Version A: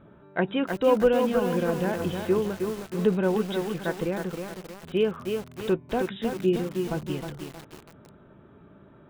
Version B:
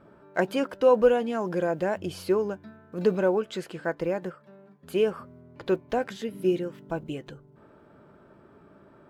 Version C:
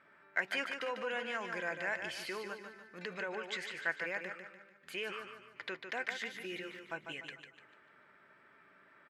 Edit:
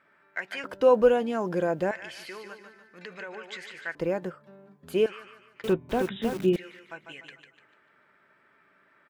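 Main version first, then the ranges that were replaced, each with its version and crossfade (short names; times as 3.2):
C
0.64–1.91 from B
3.95–5.06 from B
5.64–6.56 from A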